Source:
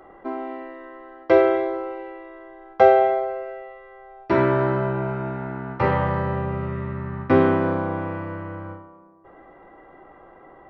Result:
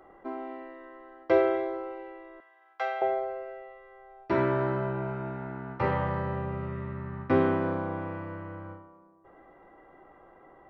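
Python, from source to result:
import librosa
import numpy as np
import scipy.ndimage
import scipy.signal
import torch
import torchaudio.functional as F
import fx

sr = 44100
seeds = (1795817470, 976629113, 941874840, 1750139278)

y = fx.highpass(x, sr, hz=1300.0, slope=12, at=(2.4, 3.02))
y = y * 10.0 ** (-7.0 / 20.0)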